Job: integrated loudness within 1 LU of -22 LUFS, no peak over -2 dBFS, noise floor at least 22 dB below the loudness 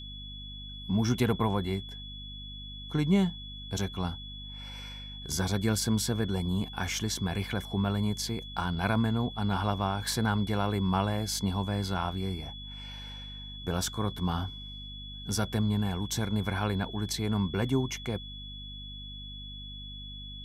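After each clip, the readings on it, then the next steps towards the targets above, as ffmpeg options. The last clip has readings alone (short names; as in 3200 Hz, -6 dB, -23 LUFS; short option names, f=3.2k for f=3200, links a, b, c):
hum 50 Hz; harmonics up to 250 Hz; hum level -43 dBFS; steady tone 3400 Hz; tone level -43 dBFS; loudness -32.0 LUFS; peak -13.5 dBFS; loudness target -22.0 LUFS
-> -af "bandreject=f=50:t=h:w=4,bandreject=f=100:t=h:w=4,bandreject=f=150:t=h:w=4,bandreject=f=200:t=h:w=4,bandreject=f=250:t=h:w=4"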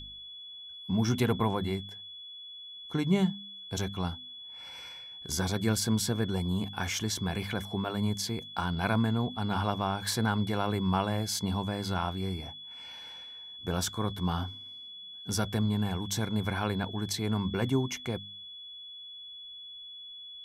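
hum none; steady tone 3400 Hz; tone level -43 dBFS
-> -af "bandreject=f=3.4k:w=30"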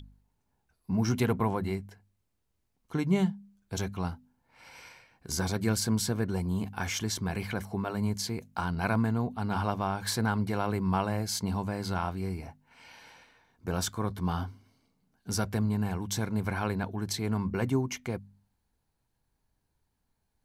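steady tone none; loudness -31.5 LUFS; peak -14.0 dBFS; loudness target -22.0 LUFS
-> -af "volume=9.5dB"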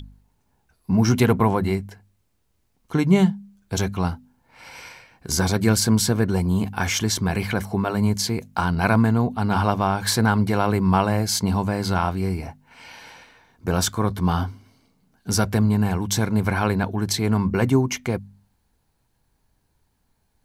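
loudness -22.0 LUFS; peak -4.5 dBFS; noise floor -69 dBFS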